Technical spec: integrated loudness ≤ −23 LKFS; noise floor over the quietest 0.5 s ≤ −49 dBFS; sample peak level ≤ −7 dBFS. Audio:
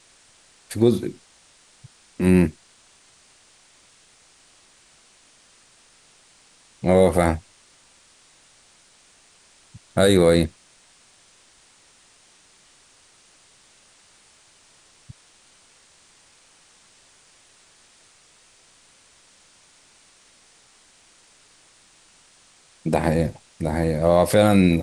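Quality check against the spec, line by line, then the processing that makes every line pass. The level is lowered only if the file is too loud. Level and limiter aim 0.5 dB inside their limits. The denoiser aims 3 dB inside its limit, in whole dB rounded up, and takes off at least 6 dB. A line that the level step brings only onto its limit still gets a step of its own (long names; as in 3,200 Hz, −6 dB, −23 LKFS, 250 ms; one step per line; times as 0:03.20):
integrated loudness −20.0 LKFS: out of spec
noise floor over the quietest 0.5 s −56 dBFS: in spec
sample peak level −5.0 dBFS: out of spec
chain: level −3.5 dB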